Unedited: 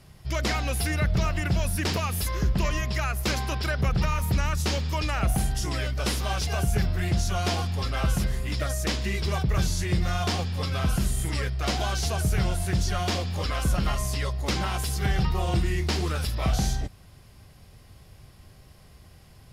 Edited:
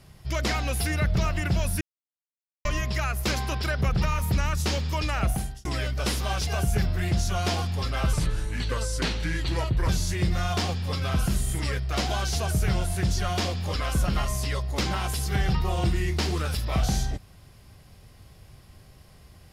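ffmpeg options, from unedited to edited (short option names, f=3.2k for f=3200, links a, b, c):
-filter_complex "[0:a]asplit=6[a][b][c][d][e][f];[a]atrim=end=1.81,asetpts=PTS-STARTPTS,afade=t=out:st=1.806:d=0.004:c=hsin[g];[b]atrim=start=1.81:end=2.65,asetpts=PTS-STARTPTS,volume=0[h];[c]atrim=start=2.65:end=5.65,asetpts=PTS-STARTPTS,afade=t=in:d=0.004:c=hsin,afade=t=out:st=2.59:d=0.41[i];[d]atrim=start=5.65:end=8.134,asetpts=PTS-STARTPTS,afade=t=in:d=0.004:c=hsin[j];[e]atrim=start=8.13:end=9.59,asetpts=PTS-STARTPTS,asetrate=36603,aresample=44100,atrim=end_sample=77573,asetpts=PTS-STARTPTS[k];[f]atrim=start=9.586[l];[g][h][i][j]concat=n=4:v=0:a=1[m];[m][k]acrossfade=d=0.004:c1=hsin:c2=hsin[n];[n][l]acrossfade=d=0.004:c1=hsin:c2=hsin"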